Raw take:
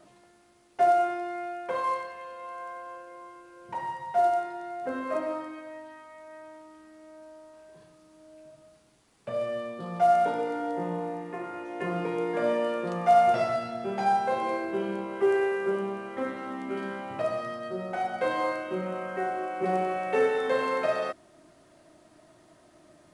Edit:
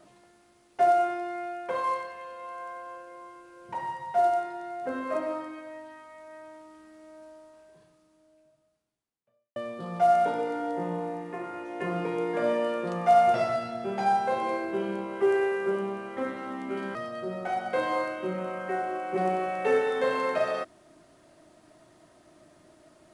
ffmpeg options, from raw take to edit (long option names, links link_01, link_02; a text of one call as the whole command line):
ffmpeg -i in.wav -filter_complex "[0:a]asplit=3[link_01][link_02][link_03];[link_01]atrim=end=9.56,asetpts=PTS-STARTPTS,afade=type=out:start_time=7.24:duration=2.32:curve=qua[link_04];[link_02]atrim=start=9.56:end=16.952,asetpts=PTS-STARTPTS,afade=type=in:duration=0.004:curve=hsin[link_05];[link_03]atrim=start=17.428[link_06];[link_04][link_05]concat=n=2:v=0:a=1[link_07];[link_07][link_06]acrossfade=duration=0.004:curve1=hsin:curve2=hsin" out.wav